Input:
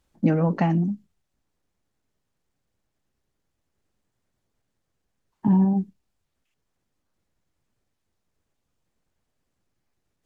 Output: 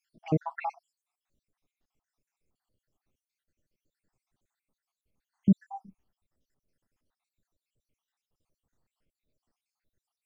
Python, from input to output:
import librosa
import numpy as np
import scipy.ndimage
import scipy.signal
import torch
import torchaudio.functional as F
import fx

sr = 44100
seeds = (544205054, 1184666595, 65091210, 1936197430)

y = fx.spec_dropout(x, sr, seeds[0], share_pct=73)